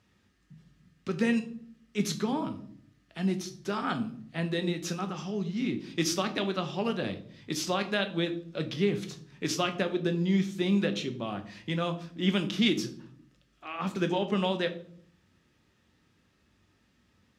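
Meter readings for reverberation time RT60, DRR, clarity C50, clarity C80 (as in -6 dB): 0.55 s, 6.5 dB, 13.5 dB, 16.5 dB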